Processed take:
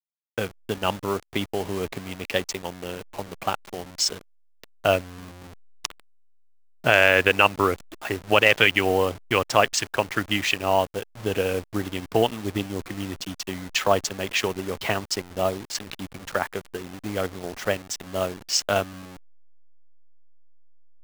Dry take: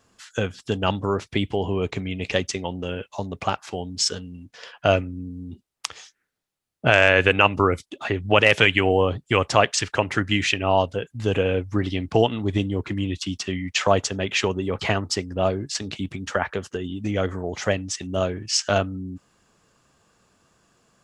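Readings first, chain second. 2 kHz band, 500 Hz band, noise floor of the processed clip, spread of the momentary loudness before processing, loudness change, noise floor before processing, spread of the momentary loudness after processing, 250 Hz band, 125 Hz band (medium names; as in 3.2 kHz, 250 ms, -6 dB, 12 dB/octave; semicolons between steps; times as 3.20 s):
-0.5 dB, -2.0 dB, -57 dBFS, 14 LU, -1.5 dB, -73 dBFS, 17 LU, -4.5 dB, -7.0 dB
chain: send-on-delta sampling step -29.5 dBFS; bass shelf 210 Hz -7.5 dB; in parallel at -5.5 dB: crossover distortion -29 dBFS; on the sum: trim -3.5 dB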